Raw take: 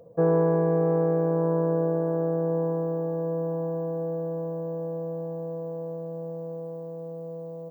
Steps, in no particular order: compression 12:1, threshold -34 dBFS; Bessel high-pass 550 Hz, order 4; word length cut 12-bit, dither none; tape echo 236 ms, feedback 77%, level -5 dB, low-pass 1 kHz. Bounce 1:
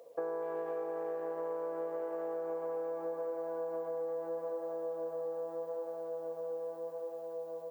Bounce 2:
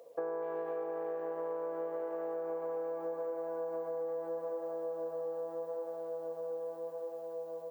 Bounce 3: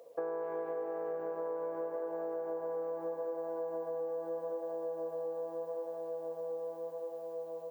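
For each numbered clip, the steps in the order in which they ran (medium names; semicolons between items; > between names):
tape echo > Bessel high-pass > compression > word length cut; tape echo > Bessel high-pass > word length cut > compression; Bessel high-pass > word length cut > tape echo > compression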